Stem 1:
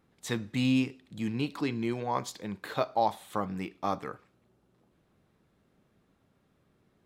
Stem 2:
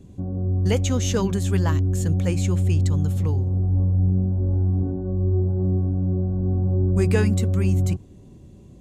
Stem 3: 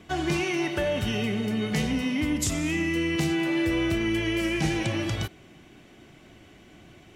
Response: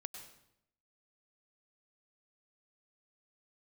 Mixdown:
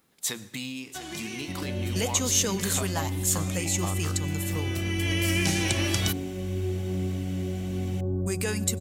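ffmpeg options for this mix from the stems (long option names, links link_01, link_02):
-filter_complex "[0:a]bandreject=frequency=60:width_type=h:width=6,bandreject=frequency=120:width_type=h:width=6,acompressor=threshold=-33dB:ratio=12,volume=-1.5dB,asplit=4[link_01][link_02][link_03][link_04];[link_02]volume=-8dB[link_05];[link_03]volume=-11.5dB[link_06];[1:a]lowshelf=frequency=74:gain=-7.5,alimiter=limit=-15dB:level=0:latency=1:release=218,adelay=1300,volume=-5dB,asplit=2[link_07][link_08];[link_08]volume=-8.5dB[link_09];[2:a]acompressor=threshold=-27dB:ratio=6,adelay=850,volume=1.5dB,asplit=2[link_10][link_11];[link_11]volume=-18.5dB[link_12];[link_04]apad=whole_len=353094[link_13];[link_10][link_13]sidechaincompress=threshold=-50dB:ratio=8:attack=10:release=1050[link_14];[3:a]atrim=start_sample=2205[link_15];[link_05][link_09][link_12]amix=inputs=3:normalize=0[link_16];[link_16][link_15]afir=irnorm=-1:irlink=0[link_17];[link_06]aecho=0:1:691:1[link_18];[link_01][link_07][link_14][link_17][link_18]amix=inputs=5:normalize=0,lowshelf=frequency=170:gain=-5.5,crystalizer=i=4:c=0"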